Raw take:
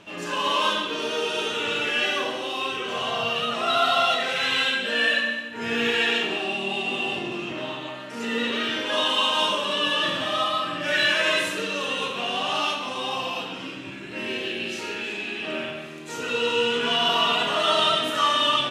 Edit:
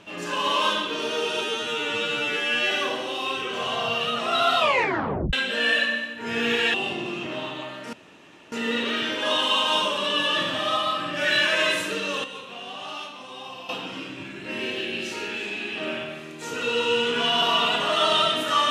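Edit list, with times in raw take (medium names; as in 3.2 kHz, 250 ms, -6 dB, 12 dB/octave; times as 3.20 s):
1.41–2.06 s: stretch 2×
3.92 s: tape stop 0.76 s
6.09–7.00 s: delete
8.19 s: insert room tone 0.59 s
11.91–13.36 s: gain -10 dB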